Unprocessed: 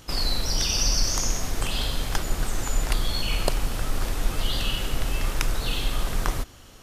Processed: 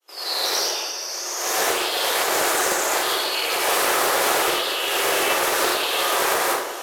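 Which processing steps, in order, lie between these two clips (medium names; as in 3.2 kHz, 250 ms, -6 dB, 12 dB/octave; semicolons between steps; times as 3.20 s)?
fade-in on the opening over 0.98 s; elliptic high-pass 360 Hz, stop band 50 dB; peaking EQ 13 kHz +6 dB 0.67 oct; compressor with a negative ratio -37 dBFS, ratio -1; plate-style reverb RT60 1.1 s, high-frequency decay 0.5×, pre-delay 75 ms, DRR -9.5 dB; loudspeaker Doppler distortion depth 0.2 ms; trim +6 dB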